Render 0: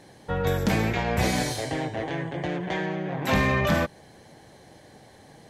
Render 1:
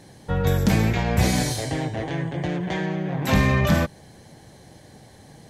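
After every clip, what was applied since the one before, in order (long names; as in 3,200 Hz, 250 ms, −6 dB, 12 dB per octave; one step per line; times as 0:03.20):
bass and treble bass +7 dB, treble +5 dB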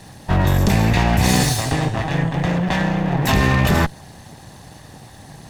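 lower of the sound and its delayed copy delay 1.1 ms
in parallel at −0.5 dB: compressor whose output falls as the input rises −23 dBFS, ratio −0.5
on the sum: level +1.5 dB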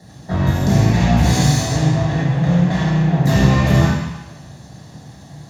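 convolution reverb RT60 1.1 s, pre-delay 3 ms, DRR −4 dB
level −14.5 dB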